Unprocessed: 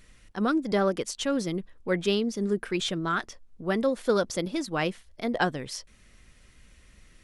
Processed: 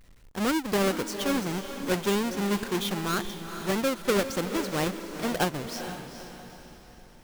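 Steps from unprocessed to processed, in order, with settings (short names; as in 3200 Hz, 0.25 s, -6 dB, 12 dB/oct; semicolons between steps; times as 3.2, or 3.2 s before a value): half-waves squared off; diffused feedback echo 0.452 s, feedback 45%, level -9 dB; gain -5 dB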